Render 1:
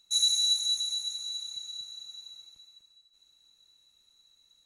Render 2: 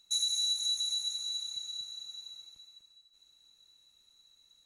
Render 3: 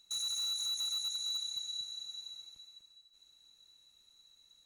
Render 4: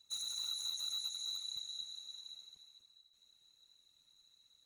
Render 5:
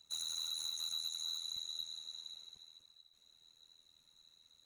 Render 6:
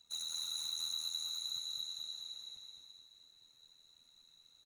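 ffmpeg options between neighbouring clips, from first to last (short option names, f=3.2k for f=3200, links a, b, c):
-af "acompressor=threshold=-28dB:ratio=6"
-af "alimiter=level_in=4dB:limit=-24dB:level=0:latency=1:release=66,volume=-4dB,asoftclip=type=hard:threshold=-32dB"
-af "afftfilt=real='hypot(re,im)*cos(2*PI*random(0))':imag='hypot(re,im)*sin(2*PI*random(1))':win_size=512:overlap=0.75,volume=1.5dB"
-filter_complex "[0:a]acrossover=split=2200[a][b];[a]alimiter=level_in=33dB:limit=-24dB:level=0:latency=1:release=124,volume=-33dB[c];[b]tremolo=f=81:d=0.857[d];[c][d]amix=inputs=2:normalize=0,asoftclip=type=tanh:threshold=-37.5dB,volume=5.5dB"
-af "flanger=delay=4.1:depth=8.3:regen=50:speed=0.5:shape=sinusoidal,aecho=1:1:212|424|636|848|1060|1272|1484|1696:0.668|0.368|0.202|0.111|0.0612|0.0336|0.0185|0.0102,volume=3dB"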